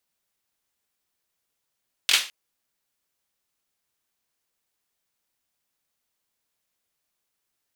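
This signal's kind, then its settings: hand clap length 0.21 s, bursts 3, apart 22 ms, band 3000 Hz, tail 0.32 s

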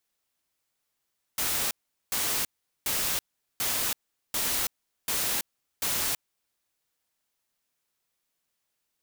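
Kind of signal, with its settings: noise bursts white, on 0.33 s, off 0.41 s, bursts 7, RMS -28 dBFS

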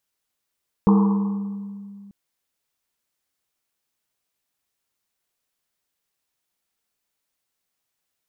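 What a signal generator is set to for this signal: Risset drum length 1.24 s, pitch 200 Hz, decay 2.61 s, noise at 980 Hz, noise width 340 Hz, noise 15%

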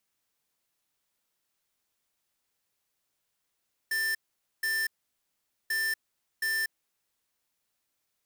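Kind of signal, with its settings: beep pattern square 1780 Hz, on 0.24 s, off 0.48 s, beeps 2, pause 0.83 s, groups 2, -29 dBFS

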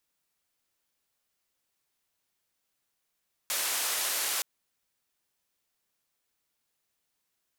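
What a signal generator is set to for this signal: noise band 530–14000 Hz, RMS -30.5 dBFS 0.92 s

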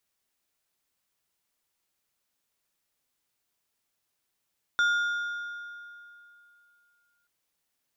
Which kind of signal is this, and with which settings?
metal hit plate, length 2.48 s, lowest mode 1420 Hz, decay 2.79 s, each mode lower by 11 dB, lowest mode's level -20 dB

